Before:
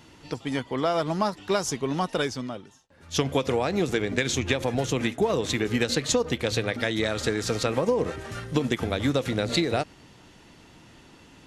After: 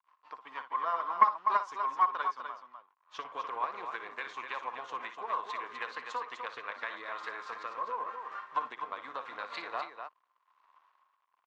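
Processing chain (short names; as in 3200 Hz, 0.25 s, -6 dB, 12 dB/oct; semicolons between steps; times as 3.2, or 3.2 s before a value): rotary speaker horn 6.3 Hz, later 0.85 Hz, at 6.41; crossover distortion -49.5 dBFS; ladder band-pass 1100 Hz, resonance 85%; loudspeakers at several distances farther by 20 m -11 dB, 86 m -7 dB; Doppler distortion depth 0.11 ms; gain +6 dB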